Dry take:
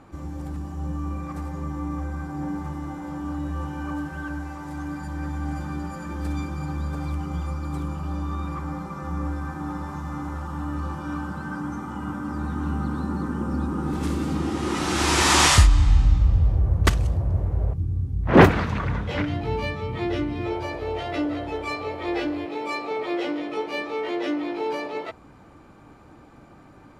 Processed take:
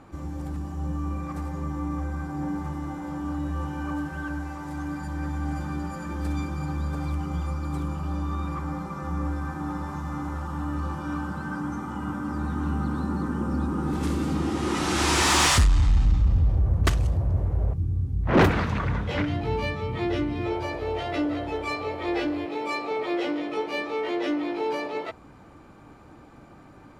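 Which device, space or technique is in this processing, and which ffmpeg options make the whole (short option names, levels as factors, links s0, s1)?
saturation between pre-emphasis and de-emphasis: -af "highshelf=f=8100:g=9.5,asoftclip=type=tanh:threshold=0.224,highshelf=f=8100:g=-9.5"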